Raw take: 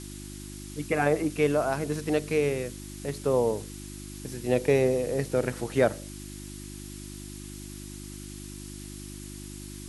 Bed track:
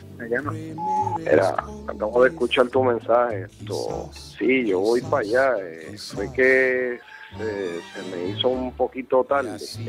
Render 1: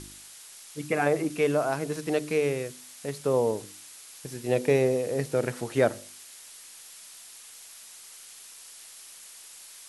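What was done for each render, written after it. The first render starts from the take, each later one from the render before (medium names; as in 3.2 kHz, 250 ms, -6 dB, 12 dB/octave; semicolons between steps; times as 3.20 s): de-hum 50 Hz, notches 7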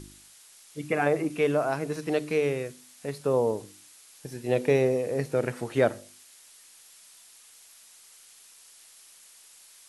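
noise print and reduce 6 dB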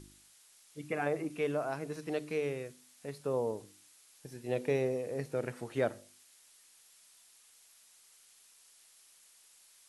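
trim -8.5 dB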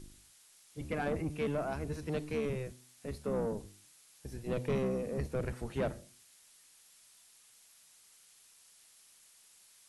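octave divider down 1 oct, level +3 dB; saturation -26.5 dBFS, distortion -14 dB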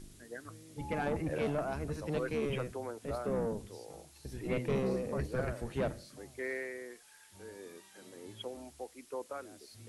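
add bed track -21.5 dB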